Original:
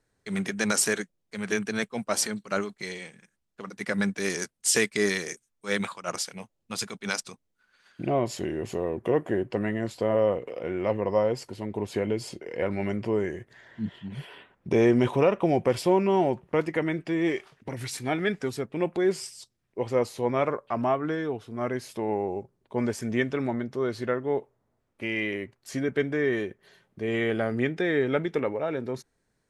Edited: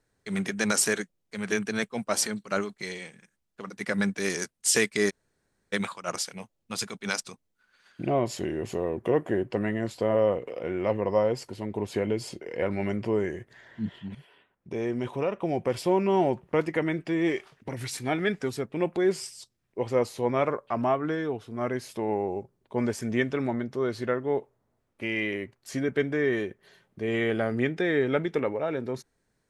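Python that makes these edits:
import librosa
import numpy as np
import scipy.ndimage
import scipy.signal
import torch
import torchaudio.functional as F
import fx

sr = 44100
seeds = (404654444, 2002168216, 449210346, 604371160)

y = fx.edit(x, sr, fx.room_tone_fill(start_s=5.1, length_s=0.63, crossfade_s=0.02),
    fx.fade_in_from(start_s=14.15, length_s=2.07, curve='qua', floor_db=-12.5), tone=tone)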